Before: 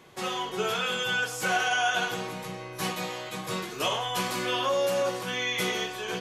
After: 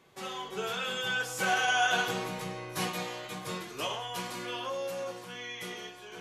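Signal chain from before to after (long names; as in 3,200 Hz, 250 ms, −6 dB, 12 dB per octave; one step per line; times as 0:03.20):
source passing by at 0:02.18, 8 m/s, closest 7.3 metres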